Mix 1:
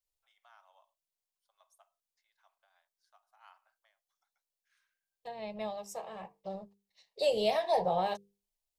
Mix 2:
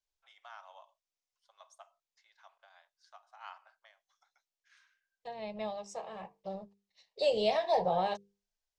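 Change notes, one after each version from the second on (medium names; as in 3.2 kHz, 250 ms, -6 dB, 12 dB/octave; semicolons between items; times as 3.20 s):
first voice +11.0 dB; master: add low-pass 7.2 kHz 24 dB/octave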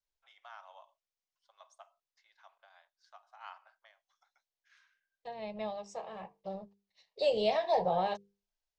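master: add distance through air 55 m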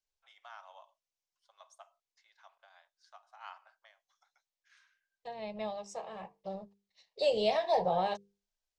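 master: remove distance through air 55 m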